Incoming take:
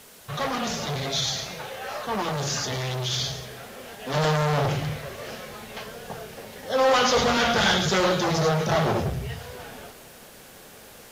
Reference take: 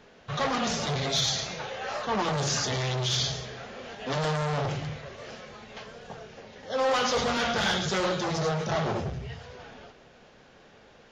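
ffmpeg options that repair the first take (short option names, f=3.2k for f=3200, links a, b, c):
-af "afwtdn=0.0035,asetnsamples=n=441:p=0,asendcmd='4.14 volume volume -5.5dB',volume=0dB"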